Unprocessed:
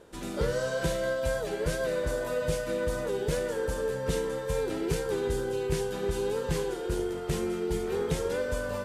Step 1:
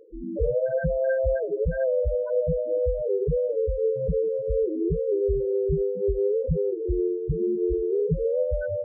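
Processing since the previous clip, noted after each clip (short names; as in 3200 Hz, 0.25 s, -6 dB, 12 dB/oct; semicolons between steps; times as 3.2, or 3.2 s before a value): notch 940 Hz, Q 11; loudest bins only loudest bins 4; gain +7.5 dB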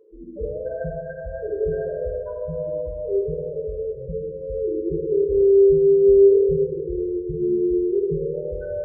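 small resonant body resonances 360/1000 Hz, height 9 dB; reverb RT60 2.0 s, pre-delay 4 ms, DRR -0.5 dB; gain -7.5 dB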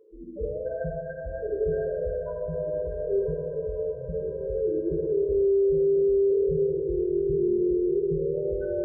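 diffused feedback echo 1.226 s, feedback 42%, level -11 dB; limiter -15 dBFS, peak gain reduction 8.5 dB; gain -2.5 dB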